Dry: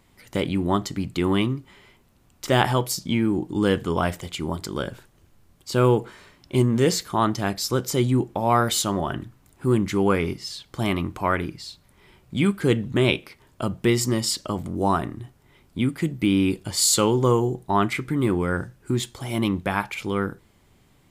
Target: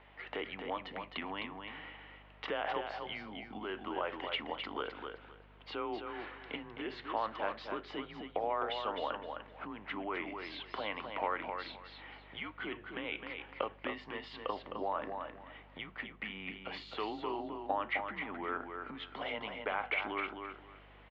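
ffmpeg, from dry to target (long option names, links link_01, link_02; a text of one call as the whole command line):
ffmpeg -i in.wav -af "alimiter=limit=-13dB:level=0:latency=1,acompressor=threshold=-34dB:ratio=12,highpass=frequency=510:width_type=q:width=0.5412,highpass=frequency=510:width_type=q:width=1.307,lowpass=frequency=3200:width_type=q:width=0.5176,lowpass=frequency=3200:width_type=q:width=0.7071,lowpass=frequency=3200:width_type=q:width=1.932,afreqshift=-100,aeval=exprs='val(0)+0.000355*(sin(2*PI*50*n/s)+sin(2*PI*2*50*n/s)/2+sin(2*PI*3*50*n/s)/3+sin(2*PI*4*50*n/s)/4+sin(2*PI*5*50*n/s)/5)':channel_layout=same,aecho=1:1:260|520|780:0.501|0.11|0.0243,volume=5.5dB" out.wav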